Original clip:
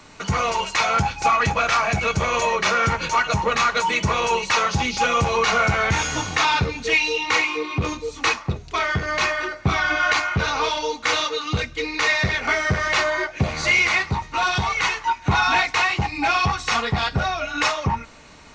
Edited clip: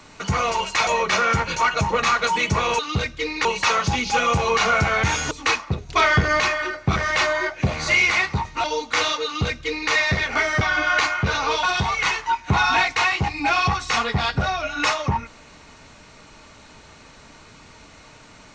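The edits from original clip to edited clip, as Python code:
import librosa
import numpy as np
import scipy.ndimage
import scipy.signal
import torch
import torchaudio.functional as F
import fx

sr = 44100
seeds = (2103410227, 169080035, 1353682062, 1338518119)

y = fx.edit(x, sr, fx.cut(start_s=0.87, length_s=1.53),
    fx.cut(start_s=6.18, length_s=1.91),
    fx.clip_gain(start_s=8.67, length_s=0.51, db=5.5),
    fx.swap(start_s=9.74, length_s=1.02, other_s=12.73, other_length_s=1.68),
    fx.duplicate(start_s=11.37, length_s=0.66, to_s=4.32), tone=tone)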